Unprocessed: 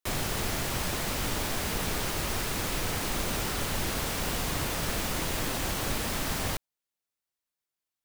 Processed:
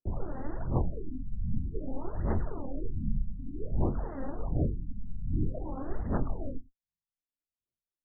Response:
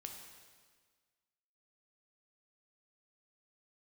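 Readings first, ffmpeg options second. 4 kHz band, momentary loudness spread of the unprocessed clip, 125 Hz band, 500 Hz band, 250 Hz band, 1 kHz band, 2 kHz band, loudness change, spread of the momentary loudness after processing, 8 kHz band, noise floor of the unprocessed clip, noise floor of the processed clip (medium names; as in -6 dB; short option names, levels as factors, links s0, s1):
under -40 dB, 0 LU, +1.5 dB, -4.0 dB, -0.5 dB, -9.5 dB, -22.0 dB, -5.5 dB, 9 LU, under -40 dB, under -85 dBFS, under -85 dBFS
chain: -filter_complex "[0:a]aphaser=in_gain=1:out_gain=1:delay=3.8:decay=0.76:speed=1.3:type=sinusoidal,asplit=2[s0][s1];[1:a]atrim=start_sample=2205,atrim=end_sample=3969,adelay=23[s2];[s1][s2]afir=irnorm=-1:irlink=0,volume=0.668[s3];[s0][s3]amix=inputs=2:normalize=0,adynamicsmooth=sensitivity=0.5:basefreq=520,afftfilt=real='re*lt(b*sr/1024,220*pow(2100/220,0.5+0.5*sin(2*PI*0.54*pts/sr)))':imag='im*lt(b*sr/1024,220*pow(2100/220,0.5+0.5*sin(2*PI*0.54*pts/sr)))':win_size=1024:overlap=0.75,volume=0.531"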